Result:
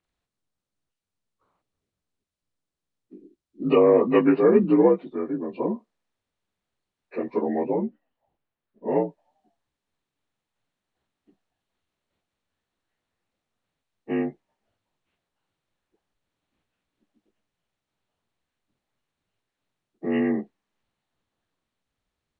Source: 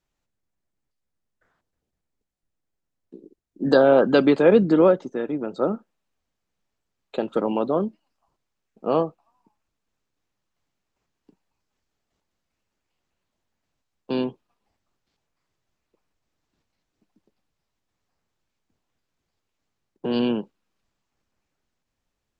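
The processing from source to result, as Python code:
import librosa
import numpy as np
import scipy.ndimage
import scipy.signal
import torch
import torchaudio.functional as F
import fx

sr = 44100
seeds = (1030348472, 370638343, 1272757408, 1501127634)

y = fx.partial_stretch(x, sr, pct=83)
y = fx.air_absorb(y, sr, metres=300.0, at=(7.76, 8.96))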